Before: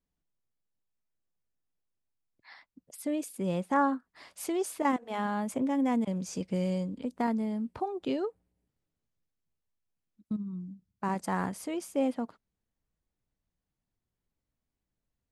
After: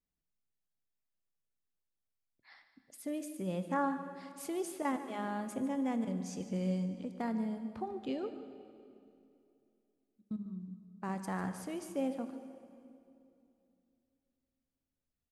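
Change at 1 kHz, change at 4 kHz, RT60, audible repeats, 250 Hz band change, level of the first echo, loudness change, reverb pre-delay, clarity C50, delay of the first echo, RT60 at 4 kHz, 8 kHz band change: -7.0 dB, -6.0 dB, 2.7 s, 1, -5.0 dB, -14.5 dB, -5.5 dB, 15 ms, 9.0 dB, 147 ms, 2.1 s, -6.0 dB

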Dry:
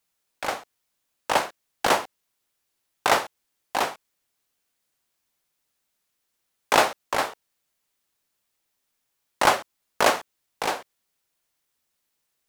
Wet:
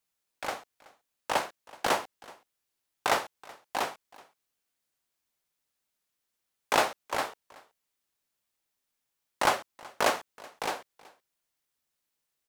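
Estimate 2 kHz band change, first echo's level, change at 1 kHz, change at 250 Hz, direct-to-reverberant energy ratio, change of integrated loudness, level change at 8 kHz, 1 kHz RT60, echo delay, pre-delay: -6.0 dB, -22.5 dB, -6.0 dB, -6.0 dB, no reverb, -6.0 dB, -6.0 dB, no reverb, 376 ms, no reverb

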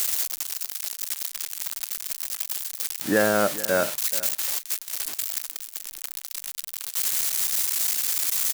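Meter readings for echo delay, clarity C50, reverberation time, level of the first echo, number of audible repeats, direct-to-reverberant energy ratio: 432 ms, no reverb, no reverb, -16.5 dB, 1, no reverb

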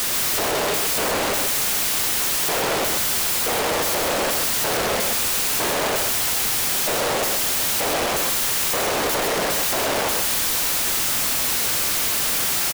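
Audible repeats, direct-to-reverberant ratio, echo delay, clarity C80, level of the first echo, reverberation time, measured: 1, no reverb, 131 ms, no reverb, -4.5 dB, no reverb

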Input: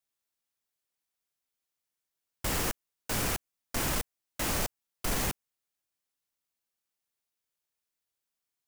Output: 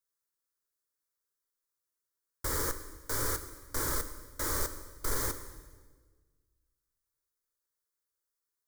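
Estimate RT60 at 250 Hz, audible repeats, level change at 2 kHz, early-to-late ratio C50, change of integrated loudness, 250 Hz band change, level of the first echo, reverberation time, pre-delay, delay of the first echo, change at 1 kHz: 1.7 s, no echo, -3.5 dB, 11.5 dB, -1.5 dB, -5.5 dB, no echo, 1.5 s, 3 ms, no echo, -2.5 dB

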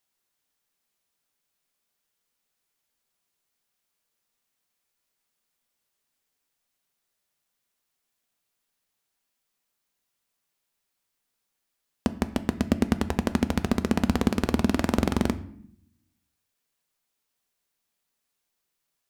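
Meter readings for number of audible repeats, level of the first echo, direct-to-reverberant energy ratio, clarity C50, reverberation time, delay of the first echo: no echo, no echo, 11.0 dB, 16.0 dB, 0.65 s, no echo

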